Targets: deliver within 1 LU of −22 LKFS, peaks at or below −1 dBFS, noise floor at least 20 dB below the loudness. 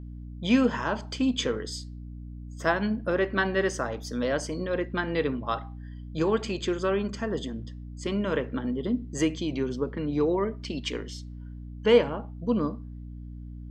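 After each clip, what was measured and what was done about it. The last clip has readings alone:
mains hum 60 Hz; hum harmonics up to 300 Hz; level of the hum −37 dBFS; integrated loudness −28.0 LKFS; sample peak −8.5 dBFS; target loudness −22.0 LKFS
→ hum removal 60 Hz, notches 5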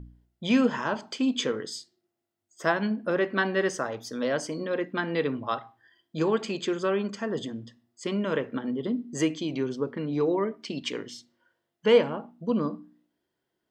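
mains hum none found; integrated loudness −28.5 LKFS; sample peak −9.0 dBFS; target loudness −22.0 LKFS
→ level +6.5 dB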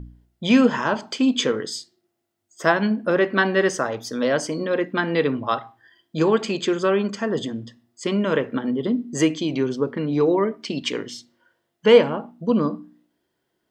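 integrated loudness −22.0 LKFS; sample peak −2.5 dBFS; background noise floor −76 dBFS

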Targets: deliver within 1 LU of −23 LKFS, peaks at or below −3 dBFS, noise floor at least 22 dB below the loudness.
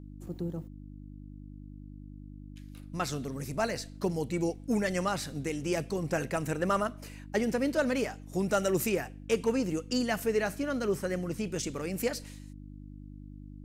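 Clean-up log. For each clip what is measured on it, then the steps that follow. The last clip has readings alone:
mains hum 50 Hz; hum harmonics up to 300 Hz; level of the hum −44 dBFS; integrated loudness −32.0 LKFS; sample peak −17.0 dBFS; target loudness −23.0 LKFS
→ hum removal 50 Hz, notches 6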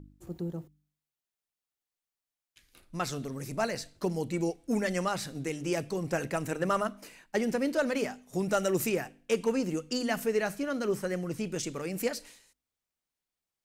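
mains hum none found; integrated loudness −32.0 LKFS; sample peak −17.0 dBFS; target loudness −23.0 LKFS
→ level +9 dB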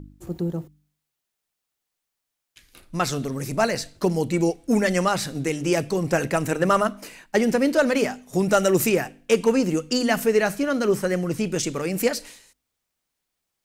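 integrated loudness −23.0 LKFS; sample peak −8.0 dBFS; background noise floor −82 dBFS

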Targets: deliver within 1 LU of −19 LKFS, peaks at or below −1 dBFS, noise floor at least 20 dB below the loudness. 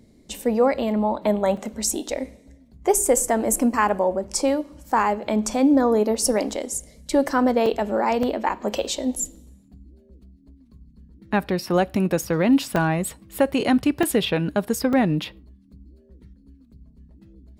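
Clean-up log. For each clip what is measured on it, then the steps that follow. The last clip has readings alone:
number of dropouts 8; longest dropout 3.1 ms; integrated loudness −22.0 LKFS; sample peak −6.0 dBFS; target loudness −19.0 LKFS
→ repair the gap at 0:01.57/0:07.13/0:07.66/0:08.23/0:12.24/0:12.76/0:14.03/0:14.93, 3.1 ms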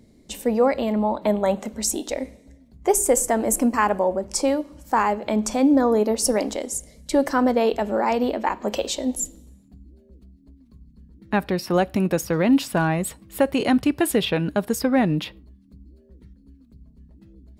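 number of dropouts 0; integrated loudness −22.0 LKFS; sample peak −6.0 dBFS; target loudness −19.0 LKFS
→ level +3 dB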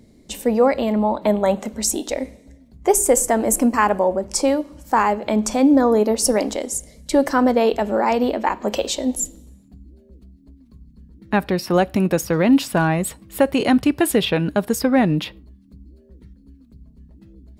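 integrated loudness −19.0 LKFS; sample peak −3.0 dBFS; background noise floor −51 dBFS

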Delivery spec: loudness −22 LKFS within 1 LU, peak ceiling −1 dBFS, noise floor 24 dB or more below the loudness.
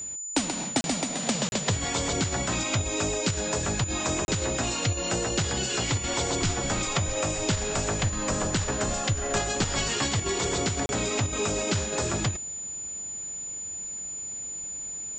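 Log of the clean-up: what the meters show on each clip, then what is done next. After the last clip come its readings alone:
number of dropouts 4; longest dropout 31 ms; interfering tone 7,000 Hz; level of the tone −33 dBFS; integrated loudness −27.5 LKFS; sample peak −14.0 dBFS; target loudness −22.0 LKFS
→ repair the gap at 0:00.81/0:01.49/0:04.25/0:10.86, 31 ms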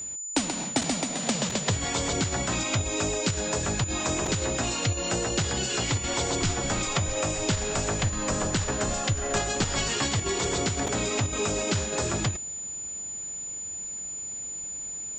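number of dropouts 0; interfering tone 7,000 Hz; level of the tone −33 dBFS
→ notch filter 7,000 Hz, Q 30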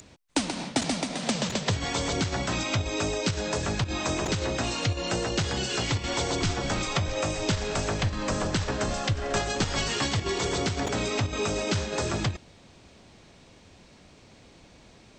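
interfering tone none found; integrated loudness −28.0 LKFS; sample peak −14.5 dBFS; target loudness −22.0 LKFS
→ level +6 dB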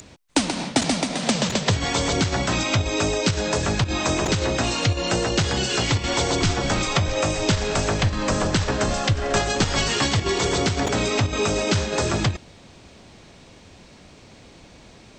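integrated loudness −22.0 LKFS; sample peak −8.5 dBFS; background noise floor −48 dBFS

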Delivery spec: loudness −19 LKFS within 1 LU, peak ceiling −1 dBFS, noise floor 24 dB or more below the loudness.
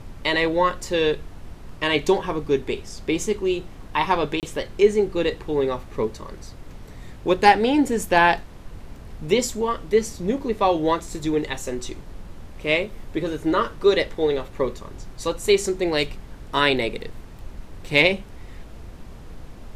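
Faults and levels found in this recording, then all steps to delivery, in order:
number of dropouts 1; longest dropout 28 ms; background noise floor −41 dBFS; target noise floor −47 dBFS; integrated loudness −22.5 LKFS; sample peak −3.0 dBFS; target loudness −19.0 LKFS
→ repair the gap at 0:04.40, 28 ms
noise reduction from a noise print 6 dB
level +3.5 dB
brickwall limiter −1 dBFS

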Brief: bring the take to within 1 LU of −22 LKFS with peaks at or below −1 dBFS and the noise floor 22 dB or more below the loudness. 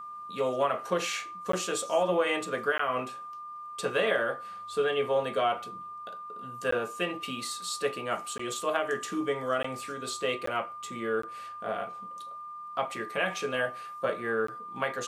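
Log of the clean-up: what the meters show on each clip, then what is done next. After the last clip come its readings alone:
number of dropouts 8; longest dropout 14 ms; interfering tone 1,200 Hz; level of the tone −39 dBFS; integrated loudness −31.5 LKFS; sample peak −13.0 dBFS; target loudness −22.0 LKFS
→ repair the gap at 0:01.52/0:02.78/0:06.71/0:08.38/0:09.63/0:10.46/0:11.22/0:14.47, 14 ms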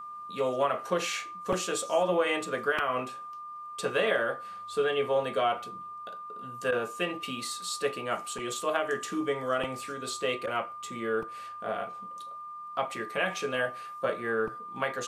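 number of dropouts 0; interfering tone 1,200 Hz; level of the tone −39 dBFS
→ notch filter 1,200 Hz, Q 30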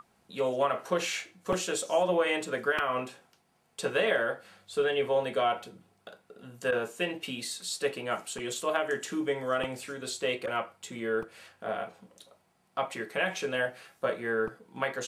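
interfering tone none found; integrated loudness −31.0 LKFS; sample peak −14.0 dBFS; target loudness −22.0 LKFS
→ level +9 dB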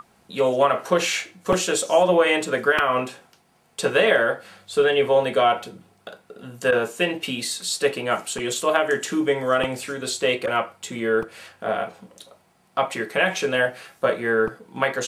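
integrated loudness −22.0 LKFS; sample peak −5.0 dBFS; background noise floor −61 dBFS

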